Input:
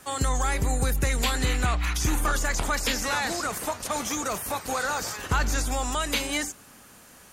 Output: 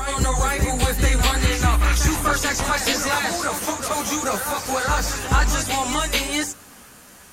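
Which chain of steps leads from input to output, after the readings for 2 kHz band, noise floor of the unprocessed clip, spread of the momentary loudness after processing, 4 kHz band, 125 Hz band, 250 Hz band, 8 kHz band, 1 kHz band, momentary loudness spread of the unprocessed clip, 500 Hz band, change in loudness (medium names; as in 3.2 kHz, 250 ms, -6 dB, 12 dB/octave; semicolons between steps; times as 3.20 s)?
+5.5 dB, -51 dBFS, 5 LU, +6.0 dB, +6.0 dB, +6.0 dB, +6.0 dB, +6.0 dB, 4 LU, +6.0 dB, +6.0 dB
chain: chorus voices 2, 1.3 Hz, delay 13 ms, depth 3 ms; reverse echo 438 ms -6.5 dB; trim +8 dB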